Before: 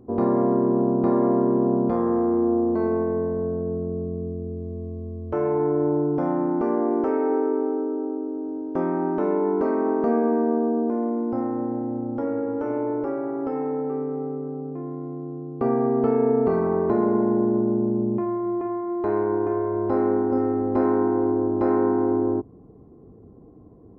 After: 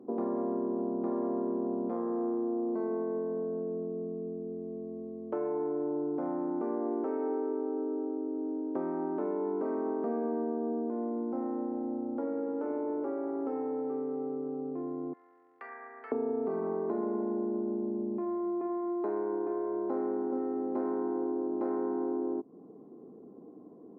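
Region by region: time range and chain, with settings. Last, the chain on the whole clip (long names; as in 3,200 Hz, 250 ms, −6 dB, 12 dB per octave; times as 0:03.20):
0:15.13–0:16.12: downward compressor 2 to 1, threshold −26 dBFS + high-pass with resonance 1,900 Hz, resonance Q 5.6
whole clip: downward compressor 3 to 1, threshold −32 dBFS; high-pass filter 210 Hz 24 dB per octave; high-shelf EQ 2,100 Hz −11.5 dB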